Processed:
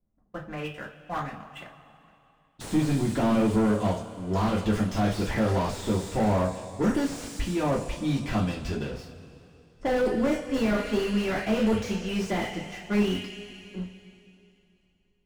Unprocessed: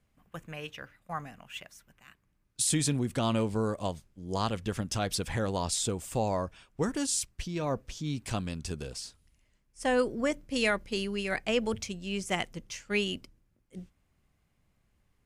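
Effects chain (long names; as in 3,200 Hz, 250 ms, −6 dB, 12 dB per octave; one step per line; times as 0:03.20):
low-pass that shuts in the quiet parts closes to 600 Hz, open at −28 dBFS
leveller curve on the samples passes 2
coupled-rooms reverb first 0.26 s, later 2.9 s, from −21 dB, DRR −3.5 dB
slew-rate limiting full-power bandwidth 72 Hz
level −3.5 dB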